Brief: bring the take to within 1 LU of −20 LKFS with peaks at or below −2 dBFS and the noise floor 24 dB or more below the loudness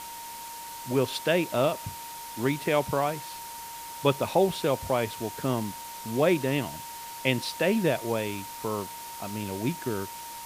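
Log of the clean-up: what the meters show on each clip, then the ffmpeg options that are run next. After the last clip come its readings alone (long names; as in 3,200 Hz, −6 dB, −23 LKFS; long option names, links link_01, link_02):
interfering tone 930 Hz; level of the tone −40 dBFS; background noise floor −41 dBFS; target noise floor −53 dBFS; integrated loudness −29.0 LKFS; sample peak −7.0 dBFS; target loudness −20.0 LKFS
→ -af "bandreject=frequency=930:width=30"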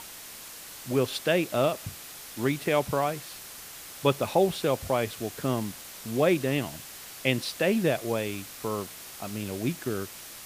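interfering tone none found; background noise floor −44 dBFS; target noise floor −53 dBFS
→ -af "afftdn=noise_reduction=9:noise_floor=-44"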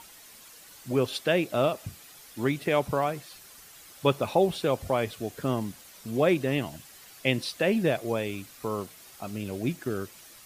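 background noise floor −51 dBFS; target noise floor −53 dBFS
→ -af "afftdn=noise_reduction=6:noise_floor=-51"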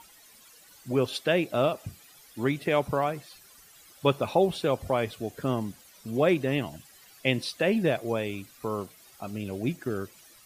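background noise floor −55 dBFS; integrated loudness −28.5 LKFS; sample peak −7.5 dBFS; target loudness −20.0 LKFS
→ -af "volume=8.5dB,alimiter=limit=-2dB:level=0:latency=1"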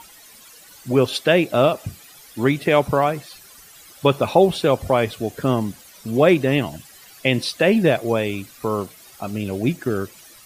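integrated loudness −20.0 LKFS; sample peak −2.0 dBFS; background noise floor −46 dBFS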